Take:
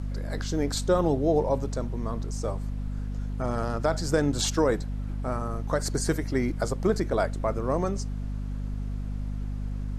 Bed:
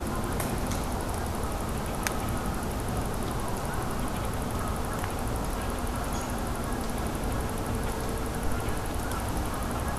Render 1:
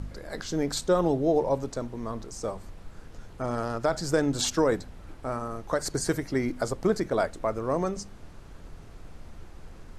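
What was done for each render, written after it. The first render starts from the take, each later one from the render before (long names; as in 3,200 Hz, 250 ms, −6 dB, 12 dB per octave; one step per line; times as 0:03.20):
hum removal 50 Hz, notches 5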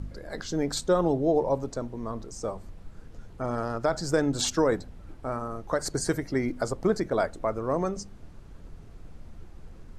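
broadband denoise 6 dB, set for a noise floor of −47 dBFS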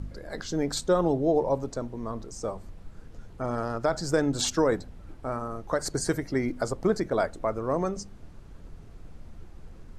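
no processing that can be heard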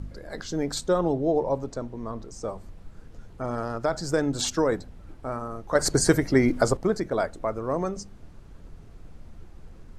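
0:00.98–0:02.49: high-shelf EQ 8,100 Hz −6 dB
0:05.75–0:06.77: clip gain +7.5 dB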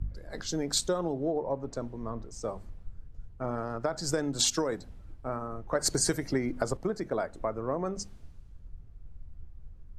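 downward compressor 8 to 1, threshold −27 dBFS, peak gain reduction 14 dB
multiband upward and downward expander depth 70%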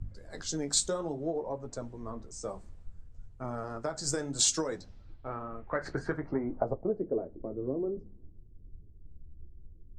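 flanger 0.59 Hz, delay 8.4 ms, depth 7.4 ms, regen −38%
low-pass filter sweep 8,100 Hz → 360 Hz, 0:04.55–0:07.29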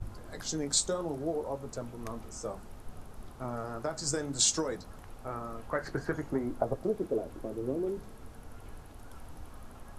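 mix in bed −20.5 dB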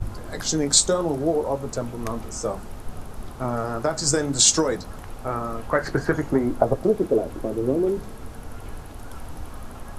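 level +11 dB
brickwall limiter −3 dBFS, peak gain reduction 3 dB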